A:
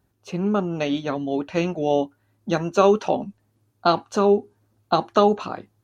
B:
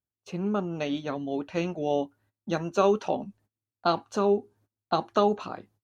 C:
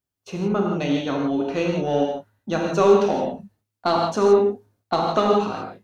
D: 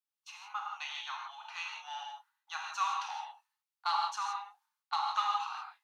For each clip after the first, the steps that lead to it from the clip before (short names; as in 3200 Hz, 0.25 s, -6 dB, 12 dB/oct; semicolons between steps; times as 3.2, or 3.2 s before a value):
gate -53 dBFS, range -22 dB; gain -6 dB
in parallel at -3 dB: soft clip -22.5 dBFS, distortion -10 dB; on the sum: non-linear reverb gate 0.19 s flat, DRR -0.5 dB
rippled Chebyshev high-pass 820 Hz, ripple 3 dB; gain -6 dB